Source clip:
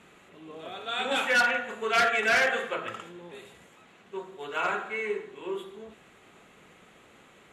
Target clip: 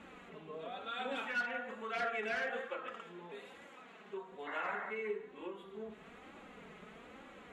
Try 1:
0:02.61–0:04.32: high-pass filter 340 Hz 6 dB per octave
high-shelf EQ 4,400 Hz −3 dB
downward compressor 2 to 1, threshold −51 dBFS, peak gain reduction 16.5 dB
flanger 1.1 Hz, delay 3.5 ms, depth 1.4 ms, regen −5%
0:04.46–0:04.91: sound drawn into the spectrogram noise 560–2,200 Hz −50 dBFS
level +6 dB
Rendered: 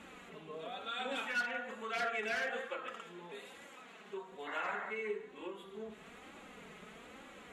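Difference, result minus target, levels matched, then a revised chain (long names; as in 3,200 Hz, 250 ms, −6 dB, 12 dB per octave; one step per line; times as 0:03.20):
8,000 Hz band +7.0 dB
0:02.61–0:04.32: high-pass filter 340 Hz 6 dB per octave
high-shelf EQ 4,400 Hz −14.5 dB
downward compressor 2 to 1, threshold −51 dBFS, peak gain reduction 16 dB
flanger 1.1 Hz, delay 3.5 ms, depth 1.4 ms, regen −5%
0:04.46–0:04.91: sound drawn into the spectrogram noise 560–2,200 Hz −50 dBFS
level +6 dB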